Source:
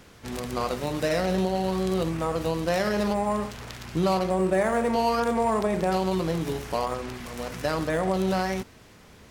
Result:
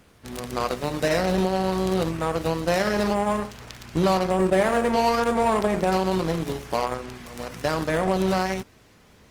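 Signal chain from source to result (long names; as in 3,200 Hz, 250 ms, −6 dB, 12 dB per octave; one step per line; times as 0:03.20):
harmonic generator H 7 −23 dB, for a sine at −13 dBFS
level +3 dB
Opus 32 kbit/s 48,000 Hz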